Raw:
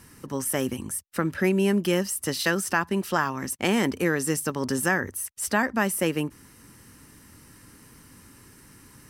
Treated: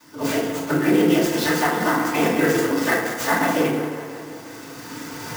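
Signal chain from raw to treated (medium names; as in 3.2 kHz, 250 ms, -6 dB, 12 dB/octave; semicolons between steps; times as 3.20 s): tracing distortion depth 0.051 ms; recorder AGC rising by 6 dB/s; tone controls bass -8 dB, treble +4 dB; in parallel at -11.5 dB: decimation with a swept rate 14×, swing 160% 1.4 Hz; on the sum: noise-vocoded speech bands 16; plain phase-vocoder stretch 0.59×; on a send: tape echo 177 ms, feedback 70%, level -9.5 dB, low-pass 3.9 kHz; on the sum: FDN reverb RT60 0.88 s, low-frequency decay 0.95×, high-frequency decay 0.6×, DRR -7 dB; sampling jitter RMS 0.024 ms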